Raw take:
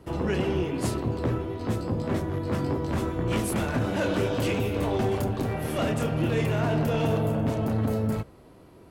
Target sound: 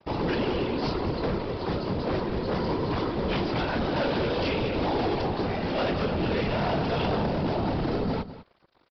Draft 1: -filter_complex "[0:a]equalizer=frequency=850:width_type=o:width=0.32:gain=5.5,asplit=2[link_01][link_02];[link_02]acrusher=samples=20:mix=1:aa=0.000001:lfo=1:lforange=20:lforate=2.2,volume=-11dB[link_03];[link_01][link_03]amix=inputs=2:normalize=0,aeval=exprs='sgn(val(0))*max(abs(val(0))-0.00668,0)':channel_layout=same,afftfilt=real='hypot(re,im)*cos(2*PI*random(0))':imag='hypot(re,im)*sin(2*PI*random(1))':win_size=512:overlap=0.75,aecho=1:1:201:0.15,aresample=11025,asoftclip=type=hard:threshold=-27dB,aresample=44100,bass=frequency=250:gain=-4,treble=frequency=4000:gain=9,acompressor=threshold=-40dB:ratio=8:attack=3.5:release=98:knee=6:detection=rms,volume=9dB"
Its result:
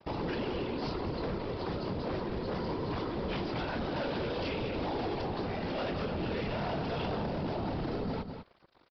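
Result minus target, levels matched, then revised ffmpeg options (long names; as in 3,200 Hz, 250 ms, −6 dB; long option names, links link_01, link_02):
downward compressor: peak gain reduction +8 dB
-filter_complex "[0:a]equalizer=frequency=850:width_type=o:width=0.32:gain=5.5,asplit=2[link_01][link_02];[link_02]acrusher=samples=20:mix=1:aa=0.000001:lfo=1:lforange=20:lforate=2.2,volume=-11dB[link_03];[link_01][link_03]amix=inputs=2:normalize=0,aeval=exprs='sgn(val(0))*max(abs(val(0))-0.00668,0)':channel_layout=same,afftfilt=real='hypot(re,im)*cos(2*PI*random(0))':imag='hypot(re,im)*sin(2*PI*random(1))':win_size=512:overlap=0.75,aecho=1:1:201:0.15,aresample=11025,asoftclip=type=hard:threshold=-27dB,aresample=44100,bass=frequency=250:gain=-4,treble=frequency=4000:gain=9,acompressor=threshold=-30dB:ratio=8:attack=3.5:release=98:knee=6:detection=rms,volume=9dB"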